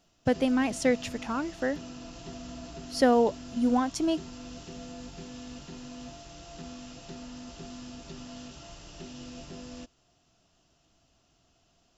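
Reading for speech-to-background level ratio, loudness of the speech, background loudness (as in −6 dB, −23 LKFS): 16.5 dB, −27.5 LKFS, −44.0 LKFS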